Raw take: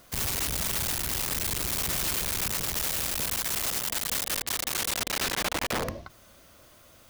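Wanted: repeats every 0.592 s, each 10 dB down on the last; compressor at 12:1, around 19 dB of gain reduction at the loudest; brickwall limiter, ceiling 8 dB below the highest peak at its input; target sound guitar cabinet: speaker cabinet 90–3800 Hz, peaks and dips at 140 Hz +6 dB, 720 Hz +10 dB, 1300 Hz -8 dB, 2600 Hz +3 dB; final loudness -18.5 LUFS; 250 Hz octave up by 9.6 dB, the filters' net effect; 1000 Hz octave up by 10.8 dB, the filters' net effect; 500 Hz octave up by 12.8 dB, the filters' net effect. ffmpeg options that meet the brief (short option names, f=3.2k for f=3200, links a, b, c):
-af "equalizer=f=250:t=o:g=9,equalizer=f=500:t=o:g=8.5,equalizer=f=1k:t=o:g=6,acompressor=threshold=-38dB:ratio=12,alimiter=level_in=12.5dB:limit=-24dB:level=0:latency=1,volume=-12.5dB,highpass=90,equalizer=f=140:t=q:w=4:g=6,equalizer=f=720:t=q:w=4:g=10,equalizer=f=1.3k:t=q:w=4:g=-8,equalizer=f=2.6k:t=q:w=4:g=3,lowpass=f=3.8k:w=0.5412,lowpass=f=3.8k:w=1.3066,aecho=1:1:592|1184|1776|2368:0.316|0.101|0.0324|0.0104,volume=27.5dB"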